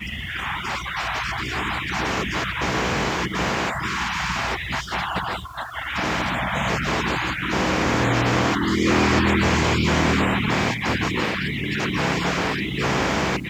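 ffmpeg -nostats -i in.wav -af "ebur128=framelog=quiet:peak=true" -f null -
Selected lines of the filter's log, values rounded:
Integrated loudness:
  I:         -22.4 LUFS
  Threshold: -32.4 LUFS
Loudness range:
  LRA:         5.1 LU
  Threshold: -42.1 LUFS
  LRA low:   -24.8 LUFS
  LRA high:  -19.6 LUFS
True peak:
  Peak:       -6.5 dBFS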